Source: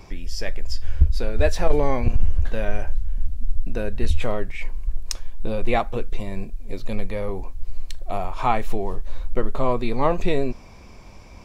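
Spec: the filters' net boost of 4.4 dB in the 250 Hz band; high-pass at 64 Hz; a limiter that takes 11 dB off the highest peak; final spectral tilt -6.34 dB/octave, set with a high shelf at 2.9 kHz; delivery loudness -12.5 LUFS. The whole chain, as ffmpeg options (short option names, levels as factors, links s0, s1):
-af "highpass=64,equalizer=f=250:t=o:g=5.5,highshelf=f=2900:g=-5,volume=7.94,alimiter=limit=1:level=0:latency=1"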